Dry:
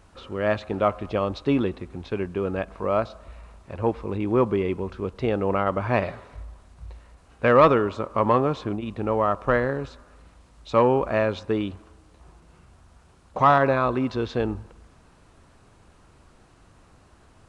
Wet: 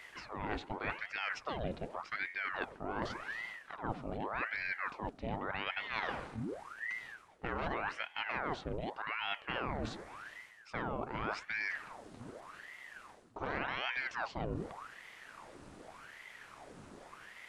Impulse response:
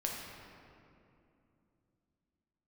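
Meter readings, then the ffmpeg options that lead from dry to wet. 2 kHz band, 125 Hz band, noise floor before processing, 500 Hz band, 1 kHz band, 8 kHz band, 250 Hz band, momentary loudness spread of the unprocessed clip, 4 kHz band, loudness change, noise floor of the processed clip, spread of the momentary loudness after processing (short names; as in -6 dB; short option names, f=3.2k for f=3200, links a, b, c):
-4.5 dB, -16.5 dB, -55 dBFS, -20.5 dB, -14.5 dB, n/a, -18.0 dB, 14 LU, -3.5 dB, -15.5 dB, -58 dBFS, 15 LU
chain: -af "afftfilt=real='re*lt(hypot(re,im),0.794)':imag='im*lt(hypot(re,im),0.794)':win_size=1024:overlap=0.75,areverse,acompressor=threshold=-38dB:ratio=5,areverse,aeval=exprs='val(0)*sin(2*PI*1100*n/s+1100*0.85/0.86*sin(2*PI*0.86*n/s))':c=same,volume=4dB"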